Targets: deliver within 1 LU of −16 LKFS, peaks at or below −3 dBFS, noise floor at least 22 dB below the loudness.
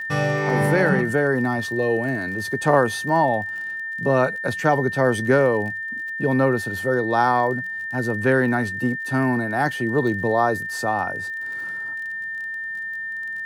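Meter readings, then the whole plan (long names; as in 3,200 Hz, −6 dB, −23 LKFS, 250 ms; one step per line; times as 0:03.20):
crackle rate 36 per second; interfering tone 1,800 Hz; level of the tone −27 dBFS; integrated loudness −22.0 LKFS; sample peak −4.0 dBFS; target loudness −16.0 LKFS
→ click removal
notch filter 1,800 Hz, Q 30
level +6 dB
brickwall limiter −3 dBFS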